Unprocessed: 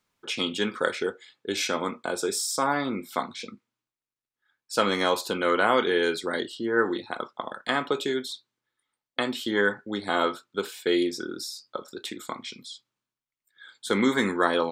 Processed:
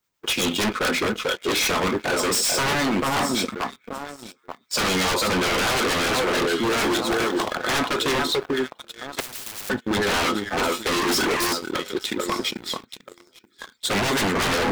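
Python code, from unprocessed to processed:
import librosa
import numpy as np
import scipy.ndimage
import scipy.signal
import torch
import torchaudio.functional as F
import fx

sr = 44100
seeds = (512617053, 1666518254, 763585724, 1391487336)

y = fx.spec_quant(x, sr, step_db=15)
y = fx.quant_dither(y, sr, seeds[0], bits=12, dither='triangular')
y = fx.peak_eq(y, sr, hz=11000.0, db=-13.5, octaves=0.27)
y = fx.echo_alternate(y, sr, ms=441, hz=1700.0, feedback_pct=53, wet_db=-7)
y = fx.leveller(y, sr, passes=3, at=(11.07, 11.53))
y = fx.harmonic_tremolo(y, sr, hz=8.7, depth_pct=50, crossover_hz=790.0)
y = fx.leveller(y, sr, passes=3)
y = fx.bass_treble(y, sr, bass_db=-1, treble_db=7, at=(6.63, 7.52))
y = 10.0 ** (-19.0 / 20.0) * (np.abs((y / 10.0 ** (-19.0 / 20.0) + 3.0) % 4.0 - 2.0) - 1.0)
y = fx.spectral_comp(y, sr, ratio=10.0, at=(9.2, 9.7))
y = y * librosa.db_to_amplitude(2.5)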